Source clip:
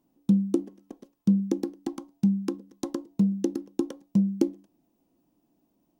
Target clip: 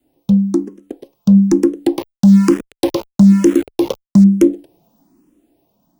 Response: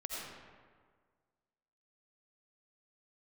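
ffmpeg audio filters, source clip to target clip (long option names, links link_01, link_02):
-filter_complex "[0:a]asettb=1/sr,asplit=3[link_01][link_02][link_03];[link_01]atrim=end=1.984[link_04];[link_02]atrim=start=1.98:end=4.24,asetpts=PTS-STARTPTS,afade=type=in:duration=0.004:curve=qsin,afade=type=out:start_time=2.256:duration=0.004:curve=qsin,aeval=exprs='val(0)*gte(abs(val(0)),0.00944)':channel_layout=same[link_05];[link_03]atrim=start=4.236[link_06];[link_04][link_05]acrossfade=duration=0.004:curve1=hsin:curve2=qsin[link_07];[link_07][link_06]acrossfade=duration=0.004:curve1=qsin:curve2=hsin,dynaudnorm=framelen=410:gausssize=7:maxgain=12dB,adynamicequalizer=threshold=0.0178:dfrequency=430:dqfactor=2.2:tfrequency=430:tqfactor=2.2:attack=5:release=100:ratio=0.375:range=3:mode=boostabove:tftype=bell,apsyclip=15dB,asplit=2[link_08][link_09];[link_09]afreqshift=1.1[link_10];[link_08][link_10]amix=inputs=2:normalize=1,volume=-2.5dB"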